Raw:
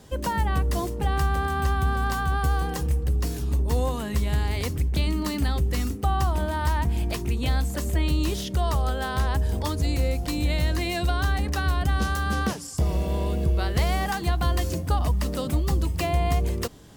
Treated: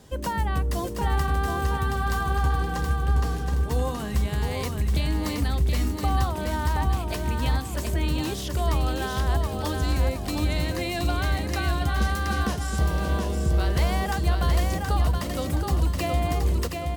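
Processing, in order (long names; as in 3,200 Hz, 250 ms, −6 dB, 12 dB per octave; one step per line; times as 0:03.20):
0:02.37–0:03.71: high-shelf EQ 8,700 Hz −10.5 dB
repeating echo 723 ms, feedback 38%, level −4.5 dB
level −1.5 dB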